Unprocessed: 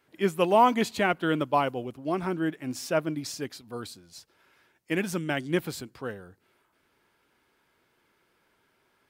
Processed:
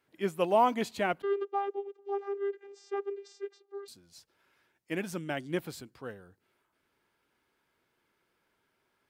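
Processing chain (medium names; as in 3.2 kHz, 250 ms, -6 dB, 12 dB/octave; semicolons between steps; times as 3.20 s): dynamic bell 630 Hz, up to +4 dB, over -35 dBFS, Q 1.4; 1.22–3.88 s: vocoder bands 16, saw 399 Hz; trim -7 dB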